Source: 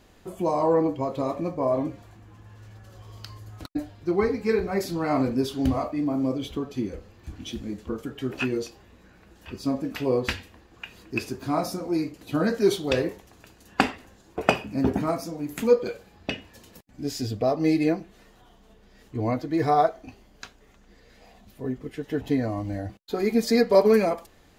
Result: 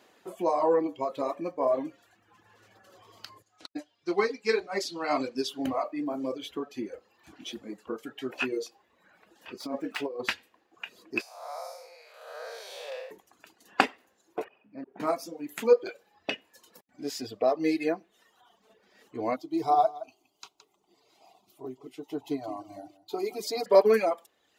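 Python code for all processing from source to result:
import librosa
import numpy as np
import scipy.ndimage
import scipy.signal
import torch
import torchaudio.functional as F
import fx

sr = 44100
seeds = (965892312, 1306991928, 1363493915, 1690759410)

y = fx.chain(x, sr, fx.lowpass(hz=10000.0, slope=12),
    fx.peak_eq(hz=5000.0, db=11.0, octaves=2.1),
    fx.upward_expand(threshold_db=-40.0, expansion=1.5), at=(3.42, 5.48))
y = fx.chain(y, sr, fx.low_shelf(hz=120.0, db=-8.5),
    fx.over_compress(threshold_db=-27.0, ratio=-0.5),
    fx.running_max(window=3), at=(9.6, 10.22))
y = fx.chain(y, sr, fx.spec_blur(span_ms=311.0),
    fx.steep_highpass(hz=500.0, slope=72),
    fx.dynamic_eq(hz=1400.0, q=1.2, threshold_db=-51.0, ratio=4.0, max_db=-4), at=(11.21, 13.11))
y = fx.chain(y, sr, fx.lowpass(hz=2500.0, slope=12),
    fx.auto_swell(attack_ms=798.0), at=(14.44, 15.0))
y = fx.chain(y, sr, fx.fixed_phaser(hz=340.0, stages=8),
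    fx.echo_single(ms=168, db=-9.5), at=(19.36, 23.66))
y = fx.bass_treble(y, sr, bass_db=-13, treble_db=-3)
y = fx.dereverb_blind(y, sr, rt60_s=0.99)
y = scipy.signal.sosfilt(scipy.signal.butter(2, 160.0, 'highpass', fs=sr, output='sos'), y)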